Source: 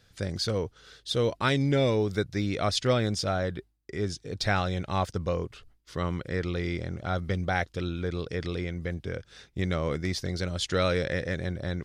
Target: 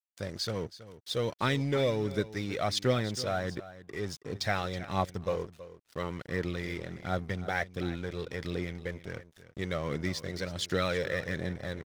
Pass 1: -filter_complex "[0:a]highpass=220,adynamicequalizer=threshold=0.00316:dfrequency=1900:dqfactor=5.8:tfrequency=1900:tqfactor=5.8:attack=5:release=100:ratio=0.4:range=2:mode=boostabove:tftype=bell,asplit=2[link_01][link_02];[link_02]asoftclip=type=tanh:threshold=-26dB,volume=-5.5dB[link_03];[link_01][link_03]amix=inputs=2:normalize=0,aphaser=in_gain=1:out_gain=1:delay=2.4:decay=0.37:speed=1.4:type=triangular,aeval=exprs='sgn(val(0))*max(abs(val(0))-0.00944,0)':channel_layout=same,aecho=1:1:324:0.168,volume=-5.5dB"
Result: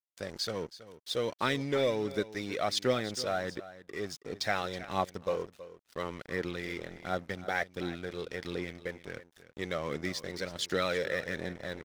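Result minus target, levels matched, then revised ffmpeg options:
125 Hz band −7.0 dB
-filter_complex "[0:a]highpass=110,adynamicequalizer=threshold=0.00316:dfrequency=1900:dqfactor=5.8:tfrequency=1900:tqfactor=5.8:attack=5:release=100:ratio=0.4:range=2:mode=boostabove:tftype=bell,asplit=2[link_01][link_02];[link_02]asoftclip=type=tanh:threshold=-26dB,volume=-5.5dB[link_03];[link_01][link_03]amix=inputs=2:normalize=0,aphaser=in_gain=1:out_gain=1:delay=2.4:decay=0.37:speed=1.4:type=triangular,aeval=exprs='sgn(val(0))*max(abs(val(0))-0.00944,0)':channel_layout=same,aecho=1:1:324:0.168,volume=-5.5dB"

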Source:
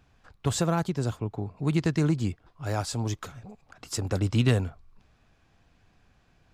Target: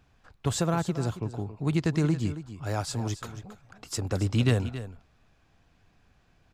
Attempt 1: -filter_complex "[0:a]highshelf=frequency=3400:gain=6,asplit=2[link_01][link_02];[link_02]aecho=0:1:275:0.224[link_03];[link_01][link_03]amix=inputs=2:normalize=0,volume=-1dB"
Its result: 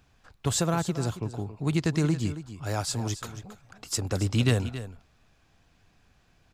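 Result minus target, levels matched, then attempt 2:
8,000 Hz band +4.5 dB
-filter_complex "[0:a]asplit=2[link_01][link_02];[link_02]aecho=0:1:275:0.224[link_03];[link_01][link_03]amix=inputs=2:normalize=0,volume=-1dB"

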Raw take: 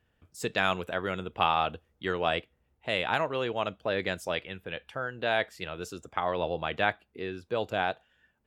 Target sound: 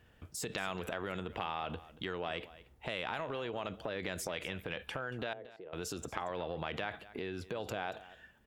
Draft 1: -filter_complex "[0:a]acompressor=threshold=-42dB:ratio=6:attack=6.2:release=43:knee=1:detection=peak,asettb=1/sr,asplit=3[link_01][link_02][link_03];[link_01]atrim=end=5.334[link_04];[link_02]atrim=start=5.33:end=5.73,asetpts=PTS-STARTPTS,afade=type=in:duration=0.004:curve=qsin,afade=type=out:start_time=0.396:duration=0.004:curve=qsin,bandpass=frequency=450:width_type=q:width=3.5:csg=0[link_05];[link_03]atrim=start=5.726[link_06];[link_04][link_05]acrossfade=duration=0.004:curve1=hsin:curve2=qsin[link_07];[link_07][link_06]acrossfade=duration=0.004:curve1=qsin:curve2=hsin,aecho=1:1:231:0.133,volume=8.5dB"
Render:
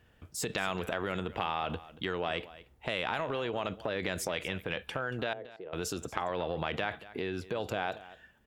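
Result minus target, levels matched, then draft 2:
downward compressor: peak gain reduction −5 dB
-filter_complex "[0:a]acompressor=threshold=-48dB:ratio=6:attack=6.2:release=43:knee=1:detection=peak,asettb=1/sr,asplit=3[link_01][link_02][link_03];[link_01]atrim=end=5.334[link_04];[link_02]atrim=start=5.33:end=5.73,asetpts=PTS-STARTPTS,afade=type=in:duration=0.004:curve=qsin,afade=type=out:start_time=0.396:duration=0.004:curve=qsin,bandpass=frequency=450:width_type=q:width=3.5:csg=0[link_05];[link_03]atrim=start=5.726[link_06];[link_04][link_05]acrossfade=duration=0.004:curve1=hsin:curve2=qsin[link_07];[link_07][link_06]acrossfade=duration=0.004:curve1=qsin:curve2=hsin,aecho=1:1:231:0.133,volume=8.5dB"

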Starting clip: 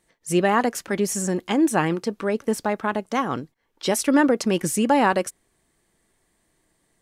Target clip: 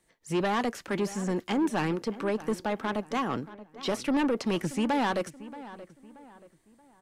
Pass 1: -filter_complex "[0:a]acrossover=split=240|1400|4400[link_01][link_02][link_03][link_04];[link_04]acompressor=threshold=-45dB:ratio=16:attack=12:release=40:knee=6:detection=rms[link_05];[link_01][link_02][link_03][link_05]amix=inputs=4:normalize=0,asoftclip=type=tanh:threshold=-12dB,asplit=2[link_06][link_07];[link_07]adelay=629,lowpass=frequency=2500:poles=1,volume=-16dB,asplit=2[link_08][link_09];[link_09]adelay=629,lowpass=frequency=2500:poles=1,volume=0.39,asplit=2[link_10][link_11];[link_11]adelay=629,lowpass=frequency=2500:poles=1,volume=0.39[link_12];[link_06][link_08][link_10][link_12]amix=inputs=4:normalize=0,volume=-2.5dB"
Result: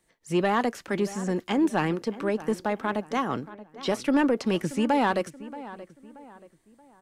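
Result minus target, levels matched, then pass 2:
soft clipping: distortion −8 dB
-filter_complex "[0:a]acrossover=split=240|1400|4400[link_01][link_02][link_03][link_04];[link_04]acompressor=threshold=-45dB:ratio=16:attack=12:release=40:knee=6:detection=rms[link_05];[link_01][link_02][link_03][link_05]amix=inputs=4:normalize=0,asoftclip=type=tanh:threshold=-19.5dB,asplit=2[link_06][link_07];[link_07]adelay=629,lowpass=frequency=2500:poles=1,volume=-16dB,asplit=2[link_08][link_09];[link_09]adelay=629,lowpass=frequency=2500:poles=1,volume=0.39,asplit=2[link_10][link_11];[link_11]adelay=629,lowpass=frequency=2500:poles=1,volume=0.39[link_12];[link_06][link_08][link_10][link_12]amix=inputs=4:normalize=0,volume=-2.5dB"

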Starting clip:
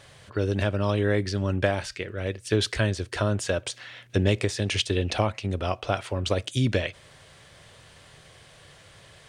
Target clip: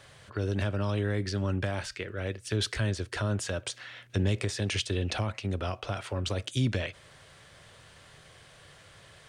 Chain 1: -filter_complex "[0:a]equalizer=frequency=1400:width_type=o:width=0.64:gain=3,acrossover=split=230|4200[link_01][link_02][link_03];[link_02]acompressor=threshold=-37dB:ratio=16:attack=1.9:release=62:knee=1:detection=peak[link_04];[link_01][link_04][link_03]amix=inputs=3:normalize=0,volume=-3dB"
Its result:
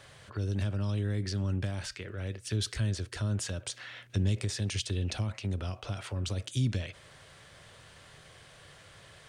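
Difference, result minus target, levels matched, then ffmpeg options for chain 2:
downward compressor: peak gain reduction +10 dB
-filter_complex "[0:a]equalizer=frequency=1400:width_type=o:width=0.64:gain=3,acrossover=split=230|4200[link_01][link_02][link_03];[link_02]acompressor=threshold=-26.5dB:ratio=16:attack=1.9:release=62:knee=1:detection=peak[link_04];[link_01][link_04][link_03]amix=inputs=3:normalize=0,volume=-3dB"

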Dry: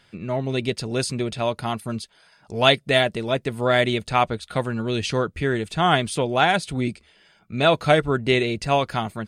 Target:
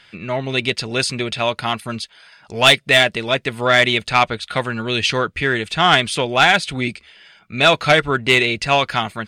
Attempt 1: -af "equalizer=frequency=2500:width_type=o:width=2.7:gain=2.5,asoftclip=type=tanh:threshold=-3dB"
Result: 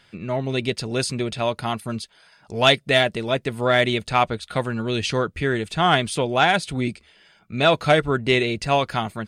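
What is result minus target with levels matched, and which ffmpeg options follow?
2,000 Hz band −2.5 dB
-af "equalizer=frequency=2500:width_type=o:width=2.7:gain=12,asoftclip=type=tanh:threshold=-3dB"

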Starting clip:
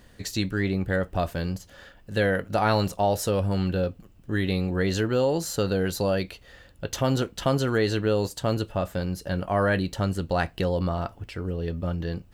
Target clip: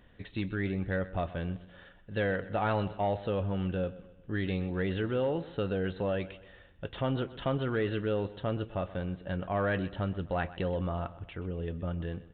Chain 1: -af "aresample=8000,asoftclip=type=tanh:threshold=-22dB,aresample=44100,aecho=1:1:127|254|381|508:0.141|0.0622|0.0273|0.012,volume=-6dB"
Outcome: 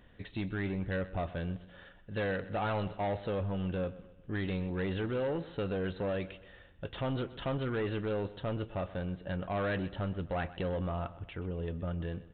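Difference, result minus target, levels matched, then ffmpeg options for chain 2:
soft clipping: distortion +12 dB
-af "aresample=8000,asoftclip=type=tanh:threshold=-13dB,aresample=44100,aecho=1:1:127|254|381|508:0.141|0.0622|0.0273|0.012,volume=-6dB"

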